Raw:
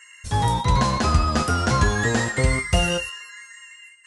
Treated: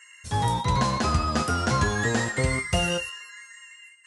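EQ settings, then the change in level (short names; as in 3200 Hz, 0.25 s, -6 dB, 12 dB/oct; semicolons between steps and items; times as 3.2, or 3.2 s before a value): HPF 76 Hz; -3.0 dB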